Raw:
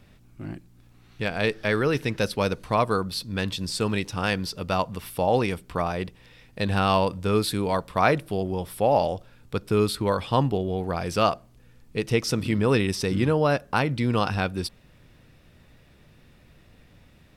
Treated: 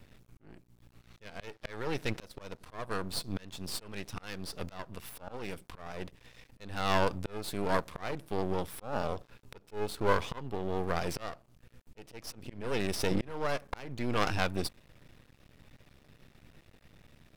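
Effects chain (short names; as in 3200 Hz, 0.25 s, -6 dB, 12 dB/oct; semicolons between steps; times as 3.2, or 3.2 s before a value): 8.93–10.39 small resonant body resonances 430/1000/2600 Hz, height 8 dB; auto swell 0.51 s; half-wave rectifier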